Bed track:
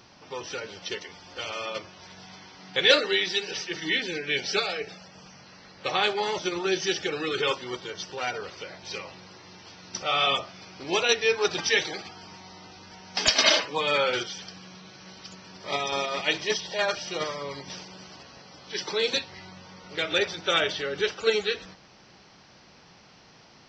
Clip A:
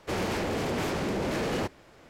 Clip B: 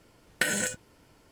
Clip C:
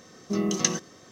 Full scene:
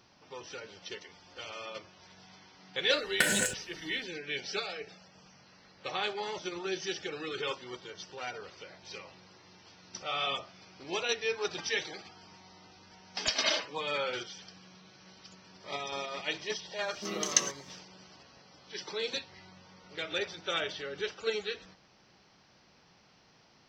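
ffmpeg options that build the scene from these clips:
-filter_complex "[0:a]volume=-9dB[a];[3:a]highpass=f=1.1k:p=1[b];[2:a]atrim=end=1.31,asetpts=PTS-STARTPTS,afade=t=in:d=0.1,afade=t=out:st=1.21:d=0.1,adelay=2790[c];[b]atrim=end=1.11,asetpts=PTS-STARTPTS,volume=-1dB,afade=t=in:d=0.1,afade=t=out:st=1.01:d=0.1,adelay=16720[d];[a][c][d]amix=inputs=3:normalize=0"

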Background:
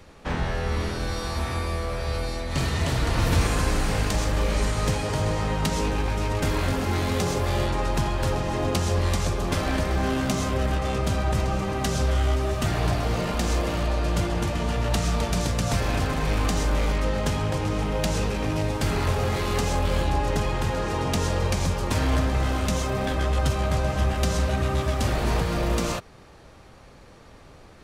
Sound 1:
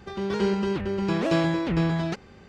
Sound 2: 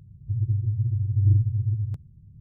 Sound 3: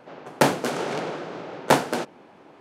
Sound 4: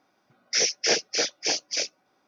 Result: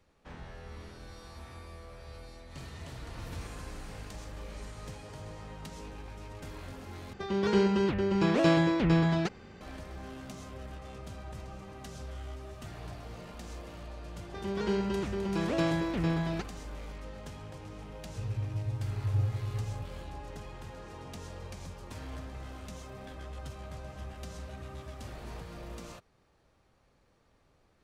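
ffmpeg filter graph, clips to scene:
-filter_complex "[1:a]asplit=2[a][b];[0:a]volume=-19.5dB,asplit=2[c][d];[c]atrim=end=7.134[e];[a]atrim=end=2.48,asetpts=PTS-STARTPTS,volume=-1dB[f];[d]atrim=start=9.606[g];[b]atrim=end=2.48,asetpts=PTS-STARTPTS,volume=-6dB,afade=t=in:d=0.004:c=hsin,afade=t=out:st=2.476:d=0.004:c=hsin,adelay=14270[h];[2:a]atrim=end=2.4,asetpts=PTS-STARTPTS,volume=-10dB,afade=t=in:d=0.004:c=hsin,afade=t=out:st=2.396:d=0.004:c=hsin,adelay=17880[i];[e][f]acrossfade=d=0.004:c1=hsin:c2=hsin[j];[j][g]acrossfade=d=0.004:c1=hsin:c2=hsin[k];[k][h][i]amix=inputs=3:normalize=0"

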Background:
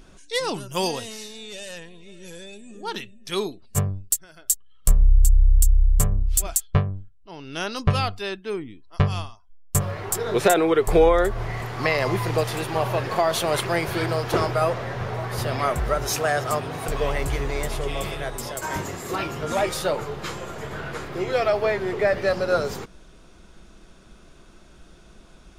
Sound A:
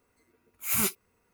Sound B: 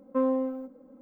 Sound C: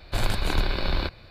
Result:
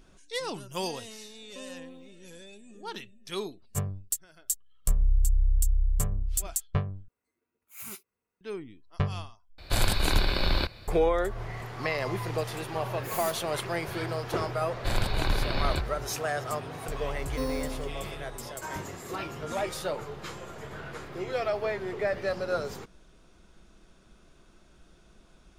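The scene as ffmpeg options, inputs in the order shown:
-filter_complex "[2:a]asplit=2[a][b];[1:a]asplit=2[c][d];[3:a]asplit=2[e][f];[0:a]volume=-8dB[g];[a]alimiter=level_in=2dB:limit=-24dB:level=0:latency=1:release=71,volume=-2dB[h];[c]lowshelf=f=100:g=-6.5[i];[e]equalizer=f=11k:w=0.44:g=8.5[j];[d]aeval=exprs='(tanh(25.1*val(0)+0.45)-tanh(0.45))/25.1':c=same[k];[b]acrusher=samples=9:mix=1:aa=0.000001[l];[g]asplit=3[m][n][o];[m]atrim=end=7.084[p];[i]atrim=end=1.33,asetpts=PTS-STARTPTS,volume=-15dB[q];[n]atrim=start=8.406:end=9.584[r];[j]atrim=end=1.3,asetpts=PTS-STARTPTS,volume=-0.5dB[s];[o]atrim=start=10.876[t];[h]atrim=end=1.01,asetpts=PTS-STARTPTS,volume=-13dB,afade=t=in:d=0.004:c=hsin,afade=t=out:st=1.006:d=0.004:c=hsin,adelay=1410[u];[k]atrim=end=1.33,asetpts=PTS-STARTPTS,volume=-4.5dB,afade=t=in:d=0.004:c=hsin,afade=t=out:st=1.326:d=0.004:c=hsin,adelay=12420[v];[f]atrim=end=1.3,asetpts=PTS-STARTPTS,volume=-3dB,afade=t=in:d=0.004:c=hsin,afade=t=out:st=1.296:d=0.004:c=hsin,adelay=14720[w];[l]atrim=end=1.01,asetpts=PTS-STARTPTS,volume=-7dB,afade=t=in:d=0.004:c=hsin,afade=t=out:st=1.006:d=0.004:c=hsin,adelay=17220[x];[p][q]acrossfade=d=0.004:c1=hsin:c2=hsin[y];[y][r]acrossfade=d=0.004:c1=hsin:c2=hsin[z];[z][s]acrossfade=d=0.004:c1=hsin:c2=hsin[aa];[aa][t]acrossfade=d=0.004:c1=hsin:c2=hsin[ab];[ab][u][v][w][x]amix=inputs=5:normalize=0"

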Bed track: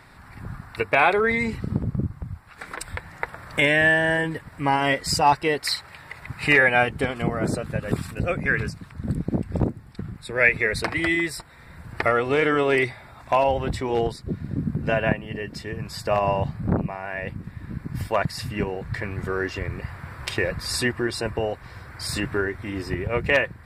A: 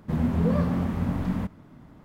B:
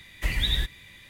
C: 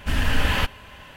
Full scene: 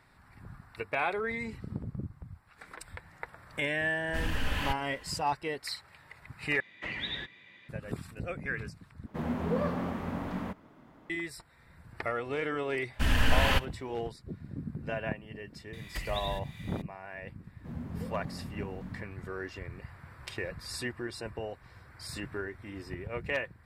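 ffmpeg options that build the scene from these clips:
-filter_complex "[3:a]asplit=2[a][b];[2:a]asplit=2[c][d];[1:a]asplit=2[e][f];[0:a]volume=-12.5dB[g];[c]highpass=210,lowpass=2.6k[h];[e]bass=f=250:g=-12,treble=f=4k:g=-5[i];[b]agate=range=-14dB:threshold=-38dB:ratio=16:release=100:detection=peak[j];[d]acompressor=threshold=-33dB:ratio=4:attack=11:release=515:knee=1:detection=peak[k];[g]asplit=3[l][m][n];[l]atrim=end=6.604[o];[h]atrim=end=1.09,asetpts=PTS-STARTPTS,volume=-3dB[p];[m]atrim=start=7.686:end=9.064[q];[i]atrim=end=2.04,asetpts=PTS-STARTPTS,volume=-1dB[r];[n]atrim=start=11.096[s];[a]atrim=end=1.16,asetpts=PTS-STARTPTS,volume=-10.5dB,afade=t=in:d=0.004:c=hsin,afade=t=out:st=1.156:d=0.004:c=hsin,adelay=4070[t];[j]atrim=end=1.16,asetpts=PTS-STARTPTS,volume=-3.5dB,afade=t=in:d=0.004:c=hsin,afade=t=out:st=1.156:d=0.004:c=hsin,adelay=12930[u];[k]atrim=end=1.09,asetpts=PTS-STARTPTS,volume=-2dB,afade=t=in:d=0.004:c=hsin,afade=t=out:st=1.086:d=0.004:c=hsin,adelay=15730[v];[f]atrim=end=2.04,asetpts=PTS-STARTPTS,volume=-16.5dB,afade=t=in:d=0.004:c=hsin,afade=t=out:st=2.036:d=0.004:c=hsin,adelay=17560[w];[o][p]acrossfade=d=0.004:c1=hsin:c2=hsin[x];[x][q]acrossfade=d=0.004:c1=hsin:c2=hsin[y];[y][r]acrossfade=d=0.004:c1=hsin:c2=hsin[z];[z][s]acrossfade=d=0.004:c1=hsin:c2=hsin[aa];[aa][t][u][v][w]amix=inputs=5:normalize=0"

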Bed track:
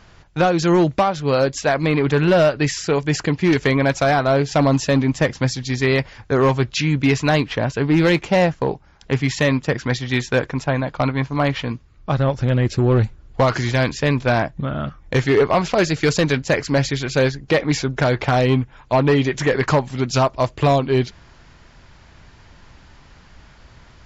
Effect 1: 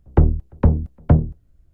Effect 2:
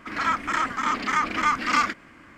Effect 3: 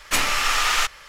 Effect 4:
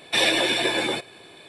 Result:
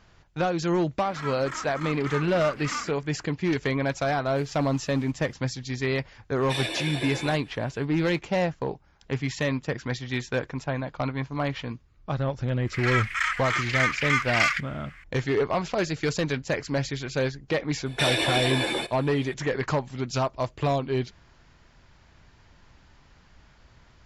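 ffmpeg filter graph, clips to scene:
-filter_complex "[2:a]asplit=2[a][b];[4:a]asplit=2[c][d];[0:a]volume=-9dB[e];[3:a]acompressor=threshold=-37dB:ratio=6:attack=3.2:release=140:knee=1:detection=peak[f];[b]highpass=f=2k:t=q:w=1.9[g];[d]alimiter=limit=-13dB:level=0:latency=1:release=55[h];[a]atrim=end=2.37,asetpts=PTS-STARTPTS,volume=-11.5dB,afade=t=in:d=0.004:c=hsin,afade=t=out:st=2.366:d=0.004:c=hsin,adelay=980[i];[f]atrim=end=1.08,asetpts=PTS-STARTPTS,volume=-17dB,afade=t=in:d=0.004:c=hsin,afade=t=out:st=1.076:d=0.004:c=hsin,adelay=187425S[j];[c]atrim=end=1.48,asetpts=PTS-STARTPTS,volume=-10.5dB,afade=t=in:d=0.004:c=hsin,afade=t=out:st=1.476:d=0.004:c=hsin,adelay=6370[k];[g]atrim=end=2.37,asetpts=PTS-STARTPTS,volume=-1dB,afade=t=in:d=0.004:c=hsin,afade=t=out:st=2.366:d=0.004:c=hsin,adelay=12670[l];[h]atrim=end=1.48,asetpts=PTS-STARTPTS,volume=-2.5dB,afade=t=in:d=0.004:c=hsin,afade=t=out:st=1.476:d=0.004:c=hsin,adelay=17860[m];[e][i][j][k][l][m]amix=inputs=6:normalize=0"

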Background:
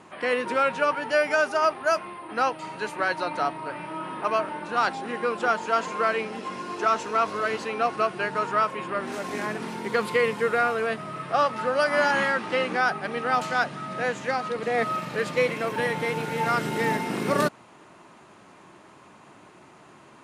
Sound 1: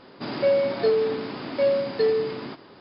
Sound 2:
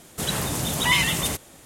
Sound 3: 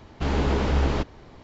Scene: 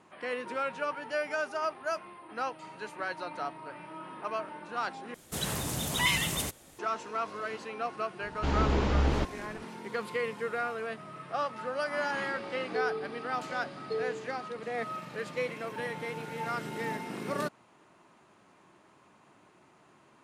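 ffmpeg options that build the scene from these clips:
-filter_complex "[0:a]volume=-10dB[a];[1:a]aecho=1:1:2.6:0.88[b];[a]asplit=2[c][d];[c]atrim=end=5.144[e];[2:a]atrim=end=1.65,asetpts=PTS-STARTPTS,volume=-7dB[f];[d]atrim=start=6.786[g];[3:a]atrim=end=1.43,asetpts=PTS-STARTPTS,volume=-4dB,afade=t=in:d=0.004:c=hsin,afade=t=out:st=1.426:d=0.004:c=hsin,adelay=8220[h];[b]atrim=end=2.8,asetpts=PTS-STARTPTS,volume=-16.5dB,afade=t=in:d=0.004:c=hsin,afade=t=out:st=2.796:d=0.004:c=hsin,adelay=11910[i];[e][f]acrossfade=d=0.004:c1=hsin:c2=hsin[j];[j][g]acrossfade=d=0.004:c1=hsin:c2=hsin[k];[k][h][i]amix=inputs=3:normalize=0"

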